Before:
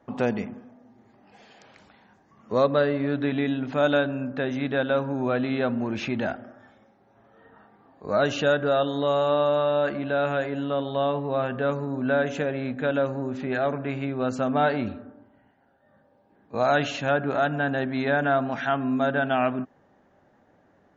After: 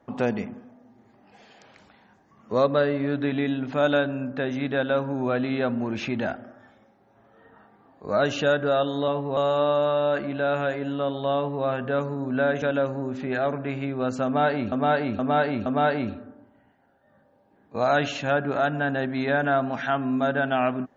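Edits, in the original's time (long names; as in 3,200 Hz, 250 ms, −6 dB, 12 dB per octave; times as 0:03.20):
0:11.07–0:11.36: duplicate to 0:09.08
0:12.33–0:12.82: remove
0:14.45–0:14.92: repeat, 4 plays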